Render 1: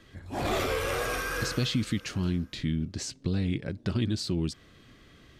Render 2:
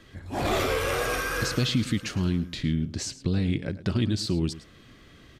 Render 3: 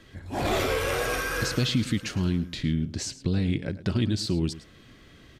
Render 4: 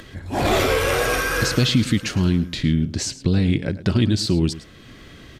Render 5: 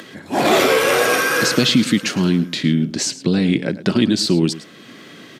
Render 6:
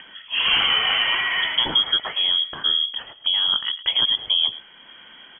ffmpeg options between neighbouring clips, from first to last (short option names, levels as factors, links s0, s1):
-af "aecho=1:1:108:0.158,volume=1.41"
-af "bandreject=f=1200:w=17"
-af "acompressor=mode=upward:threshold=0.00631:ratio=2.5,volume=2.24"
-af "highpass=f=170:w=0.5412,highpass=f=170:w=1.3066,volume=1.78"
-af "lowpass=f=3000:t=q:w=0.5098,lowpass=f=3000:t=q:w=0.6013,lowpass=f=3000:t=q:w=0.9,lowpass=f=3000:t=q:w=2.563,afreqshift=-3500,volume=0.596"